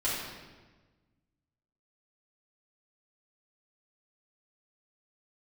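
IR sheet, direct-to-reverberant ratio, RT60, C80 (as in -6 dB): -9.5 dB, 1.3 s, 2.0 dB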